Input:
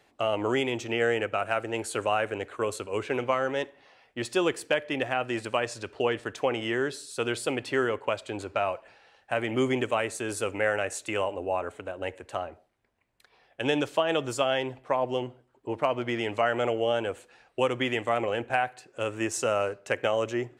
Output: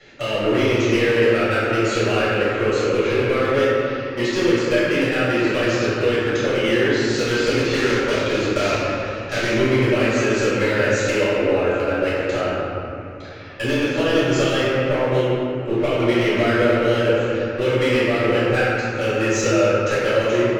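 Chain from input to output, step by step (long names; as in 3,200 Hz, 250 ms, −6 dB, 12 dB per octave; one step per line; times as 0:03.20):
0:07.04–0:09.54: one scale factor per block 3 bits
elliptic low-pass filter 6,700 Hz, stop band 40 dB
flat-topped bell 850 Hz −11 dB 1 octave
downward compressor 2.5 to 1, threshold −41 dBFS, peak gain reduction 13 dB
gain into a clipping stage and back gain 35 dB
convolution reverb RT60 3.1 s, pre-delay 3 ms, DRR −13.5 dB
level +3.5 dB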